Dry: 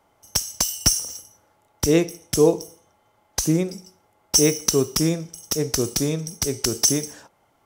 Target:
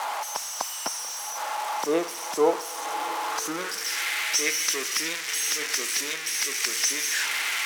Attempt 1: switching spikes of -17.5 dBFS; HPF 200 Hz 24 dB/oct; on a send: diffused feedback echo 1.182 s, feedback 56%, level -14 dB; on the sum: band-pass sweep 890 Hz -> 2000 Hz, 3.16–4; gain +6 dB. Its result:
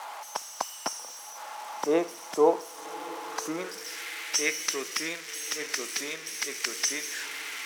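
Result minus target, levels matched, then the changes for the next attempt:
switching spikes: distortion -9 dB
change: switching spikes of -7.5 dBFS

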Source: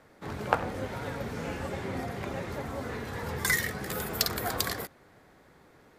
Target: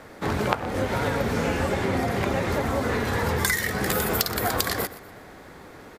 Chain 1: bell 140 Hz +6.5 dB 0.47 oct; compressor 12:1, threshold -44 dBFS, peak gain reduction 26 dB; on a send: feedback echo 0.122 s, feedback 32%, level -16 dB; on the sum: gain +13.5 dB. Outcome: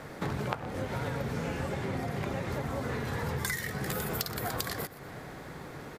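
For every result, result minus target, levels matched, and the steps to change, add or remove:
compressor: peak gain reduction +9.5 dB; 125 Hz band +4.0 dB
change: compressor 12:1, threshold -34 dBFS, peak gain reduction 16.5 dB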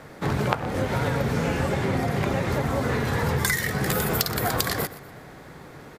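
125 Hz band +3.5 dB
change: bell 140 Hz -3.5 dB 0.47 oct

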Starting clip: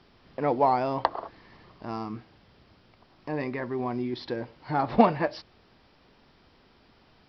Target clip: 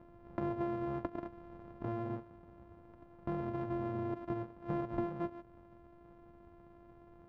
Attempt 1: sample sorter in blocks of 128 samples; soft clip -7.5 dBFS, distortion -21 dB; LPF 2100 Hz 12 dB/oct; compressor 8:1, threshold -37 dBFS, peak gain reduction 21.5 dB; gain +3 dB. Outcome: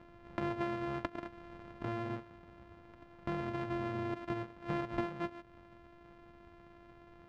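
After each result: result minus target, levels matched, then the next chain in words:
2000 Hz band +8.5 dB; soft clip: distortion -9 dB
sample sorter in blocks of 128 samples; soft clip -7.5 dBFS, distortion -21 dB; LPF 980 Hz 12 dB/oct; compressor 8:1, threshold -37 dBFS, peak gain reduction 21 dB; gain +3 dB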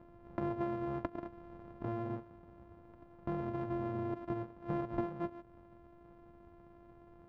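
soft clip: distortion -9 dB
sample sorter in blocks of 128 samples; soft clip -15 dBFS, distortion -12 dB; LPF 980 Hz 12 dB/oct; compressor 8:1, threshold -37 dBFS, peak gain reduction 17.5 dB; gain +3 dB

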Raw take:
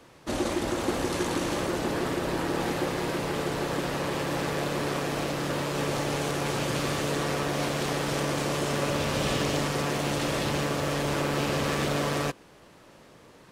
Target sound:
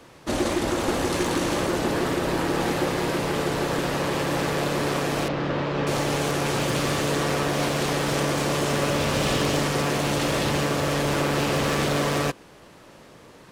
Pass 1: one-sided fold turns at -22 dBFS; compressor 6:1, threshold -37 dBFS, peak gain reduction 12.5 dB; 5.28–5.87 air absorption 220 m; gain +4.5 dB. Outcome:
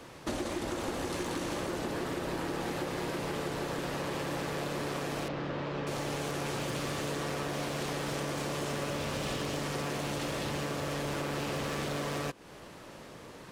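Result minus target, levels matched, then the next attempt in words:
compressor: peak gain reduction +12.5 dB
one-sided fold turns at -22 dBFS; 5.28–5.87 air absorption 220 m; gain +4.5 dB

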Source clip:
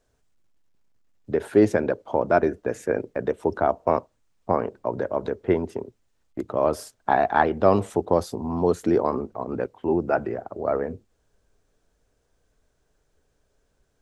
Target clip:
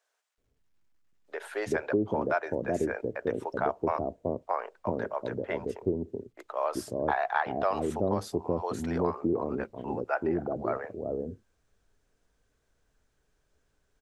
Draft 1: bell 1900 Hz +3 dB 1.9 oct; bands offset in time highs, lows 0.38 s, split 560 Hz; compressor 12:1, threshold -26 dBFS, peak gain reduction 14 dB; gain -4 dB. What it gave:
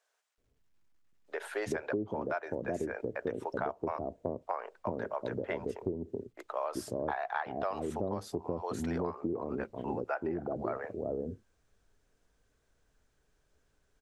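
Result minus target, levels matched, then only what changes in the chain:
compressor: peak gain reduction +7.5 dB
change: compressor 12:1, threshold -18 dBFS, peak gain reduction 6.5 dB

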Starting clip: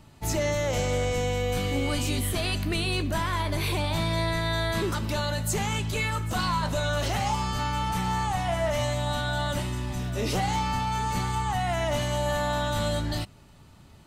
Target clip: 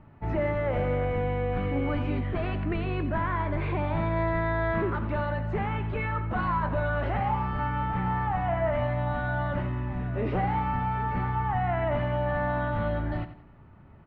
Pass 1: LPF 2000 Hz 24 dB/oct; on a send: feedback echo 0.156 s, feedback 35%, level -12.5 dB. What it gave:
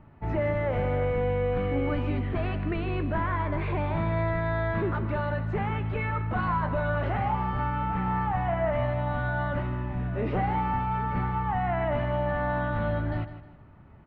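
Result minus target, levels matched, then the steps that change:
echo 68 ms late
change: feedback echo 88 ms, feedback 35%, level -12.5 dB

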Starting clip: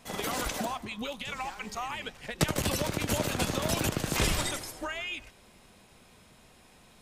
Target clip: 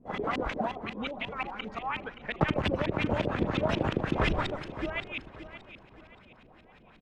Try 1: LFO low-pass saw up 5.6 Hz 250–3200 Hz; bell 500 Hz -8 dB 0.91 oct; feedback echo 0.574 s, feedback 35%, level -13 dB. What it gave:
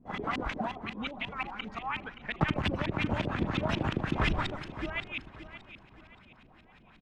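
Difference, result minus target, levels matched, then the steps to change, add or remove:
500 Hz band -4.0 dB
remove: bell 500 Hz -8 dB 0.91 oct

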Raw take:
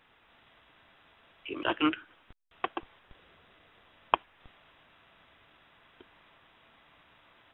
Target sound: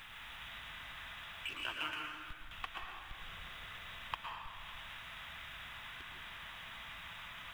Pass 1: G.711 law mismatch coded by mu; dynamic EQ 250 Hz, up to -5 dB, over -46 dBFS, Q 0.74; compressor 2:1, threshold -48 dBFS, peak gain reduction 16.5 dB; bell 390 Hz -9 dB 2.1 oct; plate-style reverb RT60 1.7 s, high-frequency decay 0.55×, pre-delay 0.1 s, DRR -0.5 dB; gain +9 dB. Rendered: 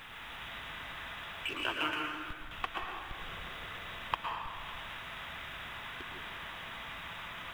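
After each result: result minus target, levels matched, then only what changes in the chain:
500 Hz band +5.5 dB; compressor: peak gain reduction -3.5 dB
change: bell 390 Hz -20 dB 2.1 oct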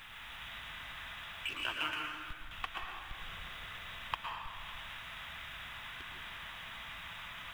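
compressor: peak gain reduction -3.5 dB
change: compressor 2:1, threshold -55 dBFS, peak gain reduction 20 dB

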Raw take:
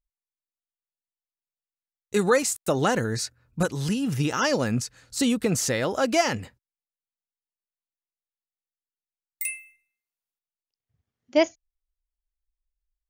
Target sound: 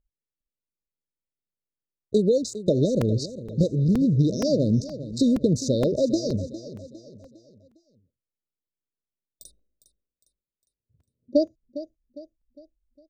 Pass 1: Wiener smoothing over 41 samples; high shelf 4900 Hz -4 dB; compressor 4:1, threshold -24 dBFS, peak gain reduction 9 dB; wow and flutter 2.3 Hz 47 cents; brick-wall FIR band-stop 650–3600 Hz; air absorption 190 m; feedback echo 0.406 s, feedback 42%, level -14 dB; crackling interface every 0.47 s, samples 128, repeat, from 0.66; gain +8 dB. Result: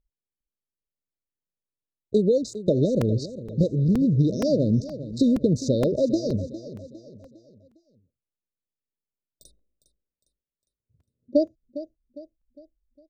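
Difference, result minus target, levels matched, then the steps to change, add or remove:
8000 Hz band -5.5 dB
change: high shelf 4900 Hz +6.5 dB

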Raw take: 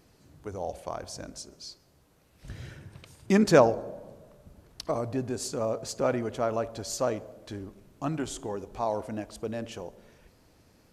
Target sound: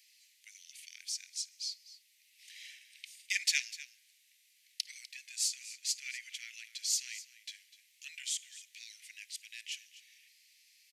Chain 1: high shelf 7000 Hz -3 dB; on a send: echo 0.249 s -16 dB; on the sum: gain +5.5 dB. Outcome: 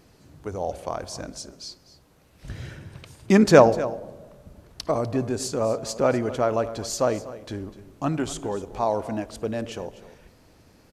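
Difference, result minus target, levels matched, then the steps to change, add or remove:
2000 Hz band -6.0 dB
add first: steep high-pass 2000 Hz 72 dB/oct

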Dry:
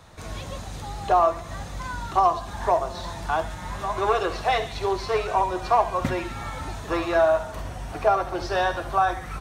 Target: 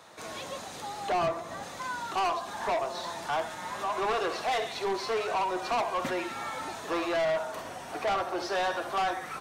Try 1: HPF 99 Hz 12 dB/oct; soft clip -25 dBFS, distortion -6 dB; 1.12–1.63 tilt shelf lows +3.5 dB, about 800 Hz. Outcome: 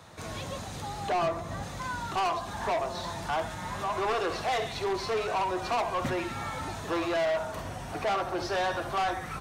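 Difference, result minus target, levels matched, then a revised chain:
125 Hz band +9.5 dB
HPF 300 Hz 12 dB/oct; soft clip -25 dBFS, distortion -6 dB; 1.12–1.63 tilt shelf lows +3.5 dB, about 800 Hz

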